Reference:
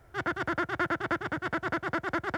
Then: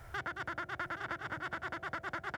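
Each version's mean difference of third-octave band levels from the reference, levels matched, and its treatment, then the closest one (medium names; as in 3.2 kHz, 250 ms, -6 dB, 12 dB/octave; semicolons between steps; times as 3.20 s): 3.5 dB: peaking EQ 320 Hz -8.5 dB 1.7 oct; de-hum 51.31 Hz, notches 15; compression 4:1, threshold -47 dBFS, peak gain reduction 17.5 dB; on a send: delay 824 ms -10.5 dB; on the sum: trim +8 dB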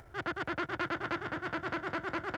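2.5 dB: treble shelf 6.9 kHz -5 dB; upward compressor, threshold -44 dBFS; feedback delay 226 ms, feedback 48%, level -10.5 dB; transformer saturation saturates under 1.5 kHz; trim -3 dB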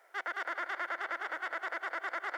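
9.0 dB: high-pass 520 Hz 24 dB/octave; peaking EQ 2 kHz +6.5 dB 0.3 oct; peak limiter -25 dBFS, peak gain reduction 8 dB; on a send: tape echo 187 ms, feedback 60%, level -10 dB, low-pass 3.6 kHz; on the sum: trim -1.5 dB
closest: second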